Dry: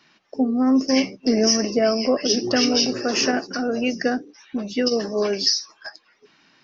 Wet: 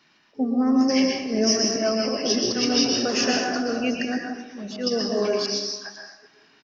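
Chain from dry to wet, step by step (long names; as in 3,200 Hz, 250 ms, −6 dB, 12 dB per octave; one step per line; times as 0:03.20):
volume swells 104 ms
on a send: single-tap delay 383 ms −19.5 dB
on the sum: dense smooth reverb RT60 0.81 s, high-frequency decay 0.8×, pre-delay 105 ms, DRR 1 dB
level −3 dB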